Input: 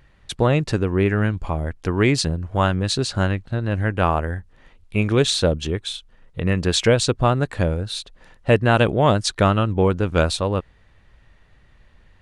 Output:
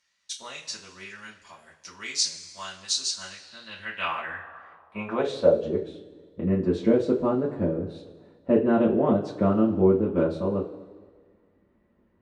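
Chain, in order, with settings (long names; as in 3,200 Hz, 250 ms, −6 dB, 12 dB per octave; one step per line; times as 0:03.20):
coupled-rooms reverb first 0.21 s, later 1.6 s, from −19 dB, DRR −6.5 dB
band-pass filter sweep 6,000 Hz → 340 Hz, 0:03.32–0:05.89
level −2.5 dB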